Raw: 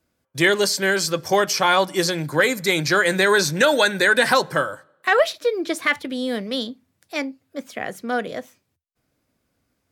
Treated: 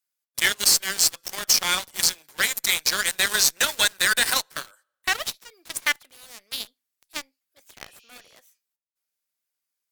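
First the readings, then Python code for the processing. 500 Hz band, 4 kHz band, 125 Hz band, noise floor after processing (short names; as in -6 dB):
-19.0 dB, +1.5 dB, -17.0 dB, -84 dBFS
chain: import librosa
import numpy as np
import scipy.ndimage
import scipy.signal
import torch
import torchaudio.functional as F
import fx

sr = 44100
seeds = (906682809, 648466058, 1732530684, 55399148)

p1 = fx.tilt_eq(x, sr, slope=4.5)
p2 = fx.schmitt(p1, sr, flips_db=-23.0)
p3 = p1 + F.gain(torch.from_numpy(p2), -5.5).numpy()
p4 = fx.highpass(p3, sr, hz=860.0, slope=6)
p5 = fx.spec_repair(p4, sr, seeds[0], start_s=7.88, length_s=0.45, low_hz=2400.0, high_hz=7000.0, source='both')
p6 = fx.quant_companded(p5, sr, bits=6)
p7 = fx.cheby_harmonics(p6, sr, harmonics=(4, 5, 7), levels_db=(-31, -29, -14), full_scale_db=0.0)
y = F.gain(torch.from_numpy(p7), -7.0).numpy()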